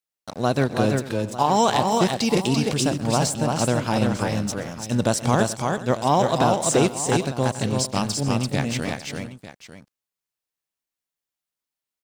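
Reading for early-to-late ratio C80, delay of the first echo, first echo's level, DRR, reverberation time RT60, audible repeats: none, 0.124 s, -19.5 dB, none, none, 5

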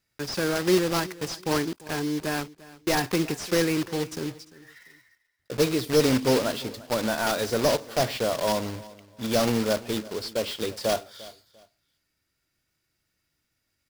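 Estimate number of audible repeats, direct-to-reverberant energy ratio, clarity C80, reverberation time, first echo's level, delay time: 2, none, none, none, -20.0 dB, 0.347 s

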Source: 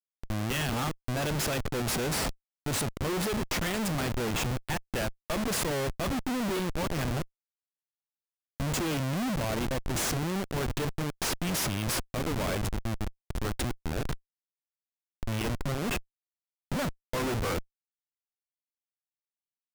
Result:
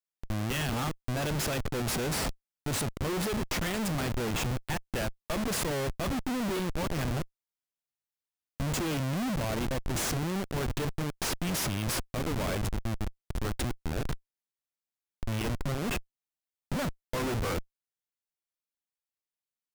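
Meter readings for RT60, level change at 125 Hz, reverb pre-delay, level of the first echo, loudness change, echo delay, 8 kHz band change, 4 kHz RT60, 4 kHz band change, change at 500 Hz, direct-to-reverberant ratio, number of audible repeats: none, 0.0 dB, none, none, -1.0 dB, none, -1.5 dB, none, -1.5 dB, -1.0 dB, none, none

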